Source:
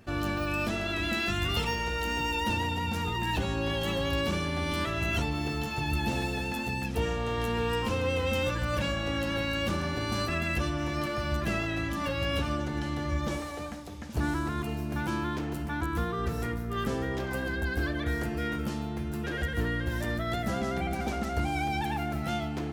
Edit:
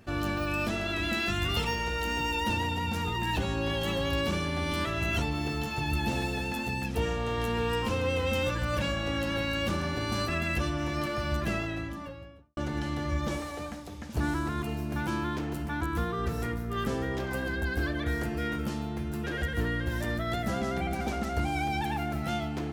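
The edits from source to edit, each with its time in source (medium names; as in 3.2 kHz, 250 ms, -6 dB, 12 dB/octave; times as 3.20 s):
11.37–12.57 s: studio fade out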